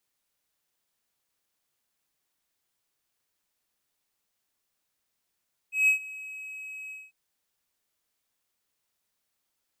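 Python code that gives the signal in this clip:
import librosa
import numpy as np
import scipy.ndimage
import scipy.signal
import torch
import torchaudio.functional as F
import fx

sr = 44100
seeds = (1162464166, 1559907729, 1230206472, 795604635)

y = fx.adsr_tone(sr, wave='triangle', hz=2550.0, attack_ms=159.0, decay_ms=106.0, sustain_db=-20.5, held_s=1.19, release_ms=206.0, level_db=-15.0)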